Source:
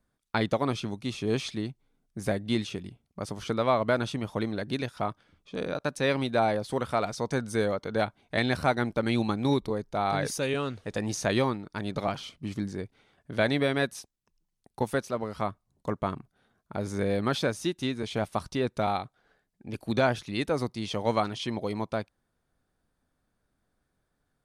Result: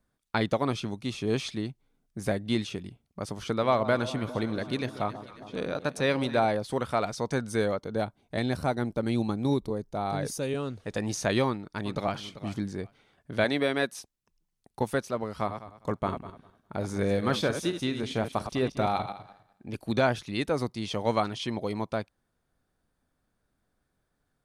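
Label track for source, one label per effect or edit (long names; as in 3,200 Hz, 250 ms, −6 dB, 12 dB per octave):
3.450000	6.460000	delay that swaps between a low-pass and a high-pass 135 ms, split 1,100 Hz, feedback 79%, level −13 dB
7.800000	10.800000	parametric band 2,100 Hz −8 dB 2.6 octaves
11.460000	12.190000	delay throw 390 ms, feedback 15%, level −13.5 dB
13.440000	13.990000	high-pass filter 200 Hz
15.290000	19.710000	feedback delay that plays each chunk backwards 101 ms, feedback 42%, level −8.5 dB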